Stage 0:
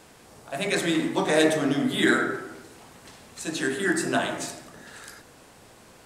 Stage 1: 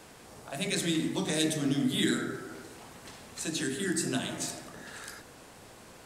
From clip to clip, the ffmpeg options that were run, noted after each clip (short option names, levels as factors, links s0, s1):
-filter_complex "[0:a]acrossover=split=280|3000[s0][s1][s2];[s1]acompressor=threshold=0.01:ratio=4[s3];[s0][s3][s2]amix=inputs=3:normalize=0"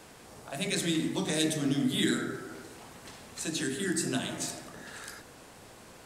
-af anull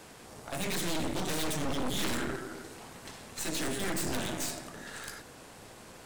-af "aeval=exprs='clip(val(0),-1,0.0251)':c=same,aeval=exprs='0.178*(cos(1*acos(clip(val(0)/0.178,-1,1)))-cos(1*PI/2))+0.0562*(cos(6*acos(clip(val(0)/0.178,-1,1)))-cos(6*PI/2))':c=same,volume=1.12"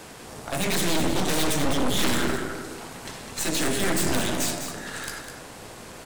-af "aecho=1:1:203:0.376,volume=2.51"